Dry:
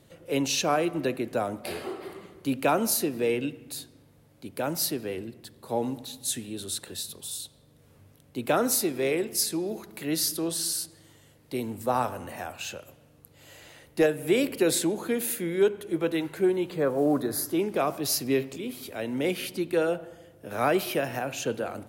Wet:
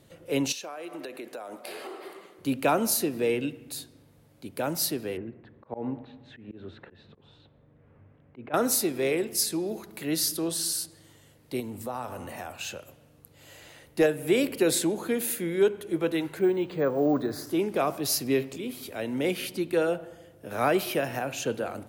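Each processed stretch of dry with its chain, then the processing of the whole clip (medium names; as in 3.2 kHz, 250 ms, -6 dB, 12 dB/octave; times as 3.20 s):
0.52–2.39 s: high-pass 400 Hz + compression 20:1, threshold -34 dBFS
5.17–8.54 s: low-pass 2.2 kHz 24 dB/octave + slow attack 136 ms
11.60–12.54 s: band-stop 1.6 kHz, Q 18 + compression 2.5:1, threshold -33 dBFS
16.39–17.47 s: distance through air 64 m + careless resampling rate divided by 2×, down filtered, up hold
whole clip: none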